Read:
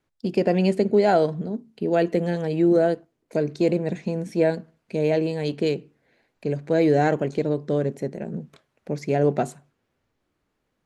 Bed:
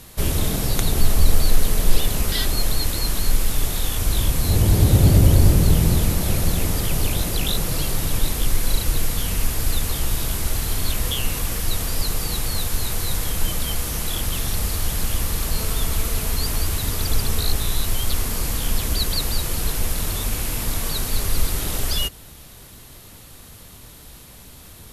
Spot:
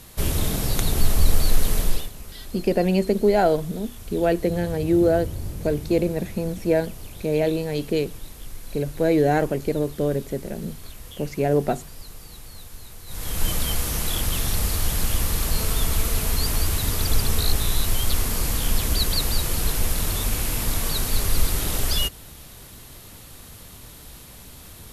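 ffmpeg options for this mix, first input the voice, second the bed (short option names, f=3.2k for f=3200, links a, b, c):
-filter_complex "[0:a]adelay=2300,volume=0dB[a];[1:a]volume=15.5dB,afade=t=out:st=1.78:d=0.33:silence=0.16788,afade=t=in:st=13.06:d=0.43:silence=0.133352[b];[a][b]amix=inputs=2:normalize=0"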